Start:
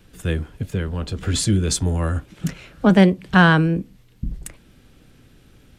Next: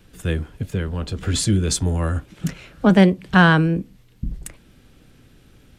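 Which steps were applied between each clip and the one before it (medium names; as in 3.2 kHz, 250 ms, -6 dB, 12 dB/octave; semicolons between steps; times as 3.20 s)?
no audible change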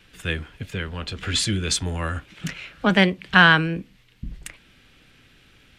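peaking EQ 2.5 kHz +14 dB 2.4 oct; trim -7 dB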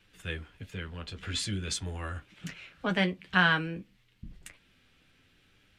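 flange 0.5 Hz, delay 9.2 ms, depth 2.7 ms, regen -35%; trim -6.5 dB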